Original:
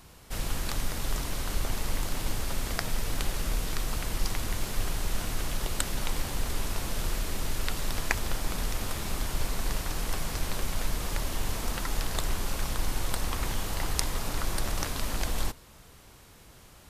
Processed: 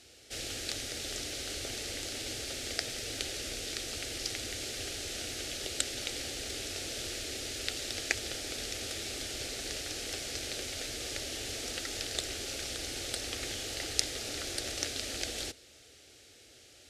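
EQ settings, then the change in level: BPF 110–6200 Hz; high shelf 2900 Hz +8.5 dB; fixed phaser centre 420 Hz, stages 4; -1.5 dB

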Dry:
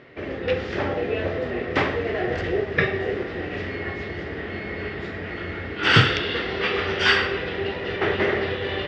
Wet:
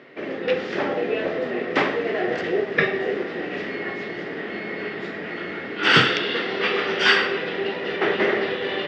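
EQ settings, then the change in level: HPF 170 Hz 24 dB/oct; +1.5 dB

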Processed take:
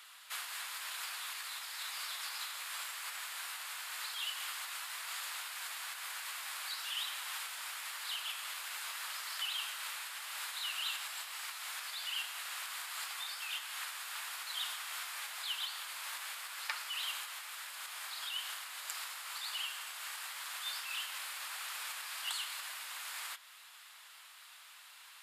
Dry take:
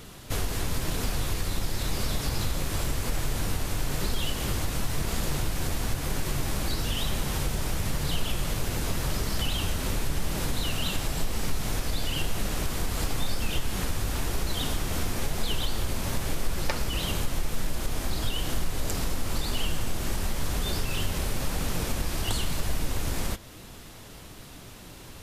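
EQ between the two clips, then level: HPF 1100 Hz 24 dB/oct; bell 5900 Hz -7.5 dB 0.34 oct; high shelf 9900 Hz -5.5 dB; -3.5 dB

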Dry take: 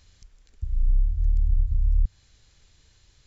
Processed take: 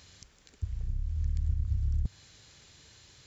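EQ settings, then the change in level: HPF 110 Hz 12 dB/oct; +6.5 dB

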